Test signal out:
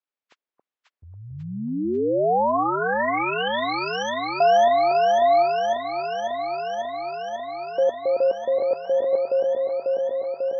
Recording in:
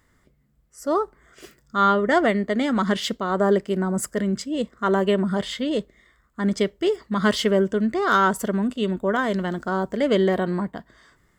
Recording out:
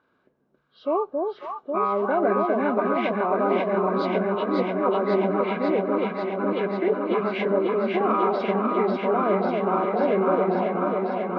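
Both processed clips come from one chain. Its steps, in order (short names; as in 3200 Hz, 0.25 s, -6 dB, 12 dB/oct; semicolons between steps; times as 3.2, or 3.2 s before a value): nonlinear frequency compression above 1000 Hz 1.5:1; tilt -1.5 dB/oct; limiter -15 dBFS; dynamic EQ 750 Hz, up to +3 dB, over -32 dBFS, Q 2.3; BPF 350–2600 Hz; echo with dull and thin repeats by turns 0.272 s, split 830 Hz, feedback 89%, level -2 dB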